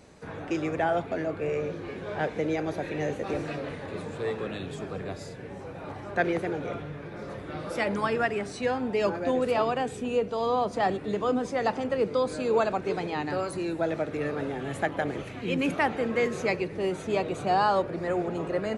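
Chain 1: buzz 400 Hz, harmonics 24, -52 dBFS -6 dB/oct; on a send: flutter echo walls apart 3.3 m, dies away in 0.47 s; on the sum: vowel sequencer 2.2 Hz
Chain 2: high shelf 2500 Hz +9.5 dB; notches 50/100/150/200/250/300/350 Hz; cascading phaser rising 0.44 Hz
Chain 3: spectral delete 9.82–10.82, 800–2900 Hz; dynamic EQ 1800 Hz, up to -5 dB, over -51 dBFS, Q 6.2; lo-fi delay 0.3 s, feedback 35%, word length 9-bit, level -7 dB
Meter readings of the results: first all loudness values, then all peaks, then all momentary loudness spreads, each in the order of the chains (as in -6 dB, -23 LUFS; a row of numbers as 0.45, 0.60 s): -36.0, -30.0, -28.5 LUFS; -16.0, -13.0, -12.5 dBFS; 14, 11, 10 LU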